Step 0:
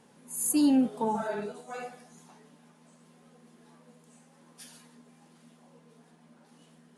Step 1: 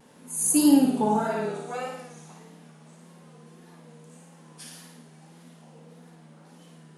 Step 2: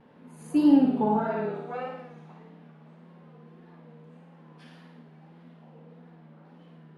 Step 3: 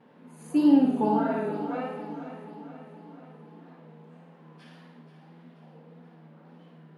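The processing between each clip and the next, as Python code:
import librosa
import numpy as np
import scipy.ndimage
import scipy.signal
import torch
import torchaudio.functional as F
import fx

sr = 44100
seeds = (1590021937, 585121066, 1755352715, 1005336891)

y1 = fx.room_flutter(x, sr, wall_m=9.5, rt60_s=0.87)
y1 = fx.vibrato(y1, sr, rate_hz=1.7, depth_cents=66.0)
y1 = y1 * librosa.db_to_amplitude(4.0)
y2 = fx.air_absorb(y1, sr, metres=390.0)
y3 = scipy.signal.sosfilt(scipy.signal.butter(2, 140.0, 'highpass', fs=sr, output='sos'), y2)
y3 = fx.echo_feedback(y3, sr, ms=482, feedback_pct=55, wet_db=-12.0)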